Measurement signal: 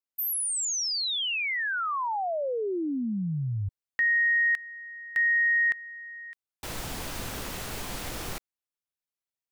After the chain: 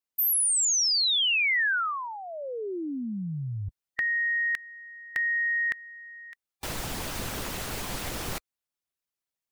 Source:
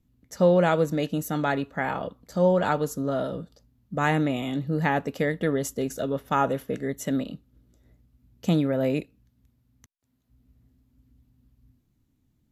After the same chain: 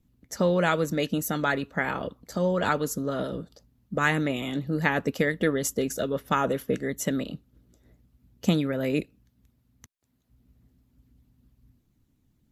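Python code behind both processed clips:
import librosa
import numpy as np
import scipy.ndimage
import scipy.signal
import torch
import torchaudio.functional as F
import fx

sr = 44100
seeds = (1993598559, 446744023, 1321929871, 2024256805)

y = fx.dynamic_eq(x, sr, hz=760.0, q=1.9, threshold_db=-40.0, ratio=8.0, max_db=-7)
y = fx.hpss(y, sr, part='percussive', gain_db=8)
y = F.gain(torch.from_numpy(y), -3.0).numpy()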